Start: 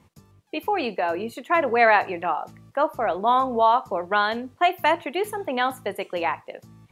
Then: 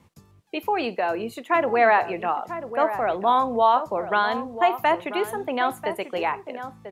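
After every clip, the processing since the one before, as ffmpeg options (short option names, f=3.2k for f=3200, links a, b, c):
-filter_complex "[0:a]acrossover=split=660|1800[a][b][c];[c]alimiter=limit=-24dB:level=0:latency=1:release=131[d];[a][b][d]amix=inputs=3:normalize=0,asplit=2[e][f];[f]adelay=991.3,volume=-10dB,highshelf=f=4k:g=-22.3[g];[e][g]amix=inputs=2:normalize=0"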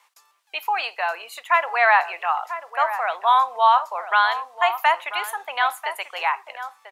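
-af "highpass=f=860:w=0.5412,highpass=f=860:w=1.3066,volume=5.5dB"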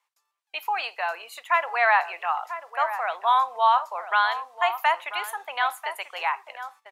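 -af "agate=range=-14dB:threshold=-44dB:ratio=16:detection=peak,volume=-3.5dB"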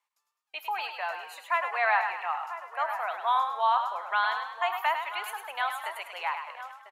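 -filter_complex "[0:a]asplit=6[a][b][c][d][e][f];[b]adelay=103,afreqshift=33,volume=-7.5dB[g];[c]adelay=206,afreqshift=66,volume=-14.2dB[h];[d]adelay=309,afreqshift=99,volume=-21dB[i];[e]adelay=412,afreqshift=132,volume=-27.7dB[j];[f]adelay=515,afreqshift=165,volume=-34.5dB[k];[a][g][h][i][j][k]amix=inputs=6:normalize=0,volume=-5.5dB"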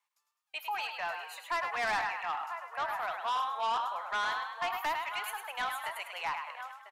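-filter_complex "[0:a]lowshelf=f=420:g=-9.5,acrossover=split=6200[a][b];[a]asoftclip=type=tanh:threshold=-27.5dB[c];[c][b]amix=inputs=2:normalize=0"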